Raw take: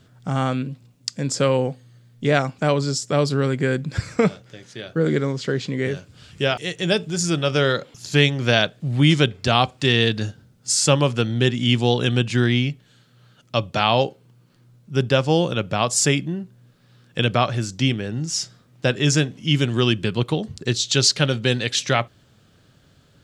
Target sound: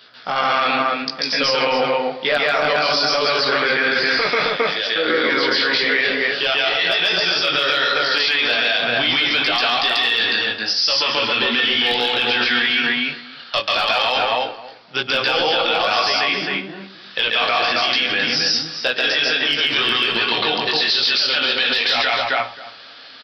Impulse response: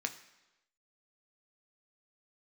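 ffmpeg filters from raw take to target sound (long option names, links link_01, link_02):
-filter_complex "[0:a]highpass=710,aemphasis=mode=production:type=75fm,acompressor=threshold=-21dB:ratio=4,aresample=11025,asoftclip=type=tanh:threshold=-20.5dB,aresample=44100,flanger=delay=16:depth=5.1:speed=1,asoftclip=type=hard:threshold=-21.5dB,asplit=2[link_01][link_02];[link_02]adelay=266,lowpass=frequency=1500:poles=1,volume=-3dB,asplit=2[link_03][link_04];[link_04]adelay=266,lowpass=frequency=1500:poles=1,volume=0.16,asplit=2[link_05][link_06];[link_06]adelay=266,lowpass=frequency=1500:poles=1,volume=0.16[link_07];[link_01][link_03][link_05][link_07]amix=inputs=4:normalize=0,asplit=2[link_08][link_09];[1:a]atrim=start_sample=2205,afade=type=out:start_time=0.16:duration=0.01,atrim=end_sample=7497,adelay=139[link_10];[link_09][link_10]afir=irnorm=-1:irlink=0,volume=3.5dB[link_11];[link_08][link_11]amix=inputs=2:normalize=0,alimiter=level_in=23.5dB:limit=-1dB:release=50:level=0:latency=1,volume=-8dB"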